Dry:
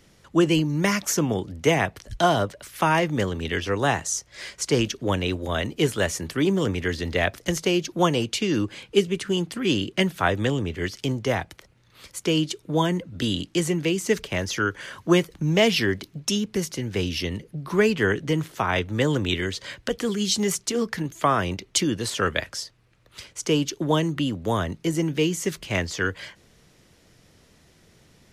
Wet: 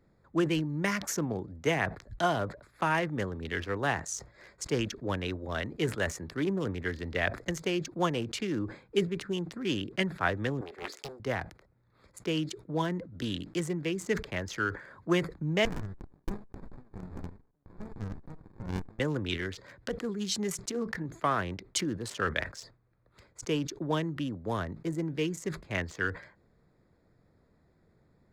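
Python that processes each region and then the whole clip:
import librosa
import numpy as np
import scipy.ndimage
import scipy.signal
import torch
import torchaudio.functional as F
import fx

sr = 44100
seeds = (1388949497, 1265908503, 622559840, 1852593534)

y = fx.chain(x, sr, fx.highpass(hz=380.0, slope=24),
    fx.high_shelf(hz=8500.0, db=10.5),
    fx.doppler_dist(depth_ms=0.63), at=(10.61, 11.2))
y = fx.chain(y, sr, fx.highpass(hz=1400.0, slope=12),
    fx.peak_eq(hz=4700.0, db=5.5, octaves=0.22),
    fx.running_max(window=65), at=(15.65, 19.0))
y = fx.wiener(y, sr, points=15)
y = fx.dynamic_eq(y, sr, hz=1700.0, q=1.6, threshold_db=-39.0, ratio=4.0, max_db=5)
y = fx.sustainer(y, sr, db_per_s=150.0)
y = y * 10.0 ** (-8.5 / 20.0)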